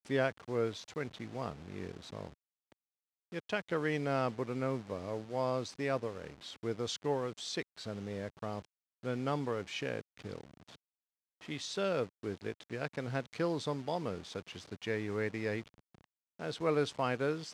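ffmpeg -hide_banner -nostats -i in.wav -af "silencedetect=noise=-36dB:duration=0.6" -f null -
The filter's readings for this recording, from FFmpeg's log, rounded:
silence_start: 2.27
silence_end: 3.34 | silence_duration: 1.07
silence_start: 10.41
silence_end: 11.49 | silence_duration: 1.08
silence_start: 15.61
silence_end: 16.41 | silence_duration: 0.80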